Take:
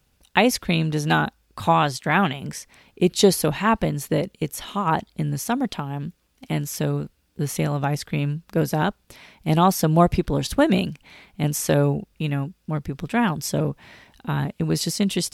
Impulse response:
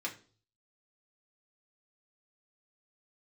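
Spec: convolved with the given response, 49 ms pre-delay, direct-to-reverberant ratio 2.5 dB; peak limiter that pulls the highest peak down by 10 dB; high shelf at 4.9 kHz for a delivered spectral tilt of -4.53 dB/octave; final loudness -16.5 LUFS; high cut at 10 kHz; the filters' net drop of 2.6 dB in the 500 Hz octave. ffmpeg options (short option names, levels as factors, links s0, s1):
-filter_complex "[0:a]lowpass=10000,equalizer=f=500:t=o:g=-3.5,highshelf=f=4900:g=6.5,alimiter=limit=0.266:level=0:latency=1,asplit=2[s0][s1];[1:a]atrim=start_sample=2205,adelay=49[s2];[s1][s2]afir=irnorm=-1:irlink=0,volume=0.562[s3];[s0][s3]amix=inputs=2:normalize=0,volume=2.24"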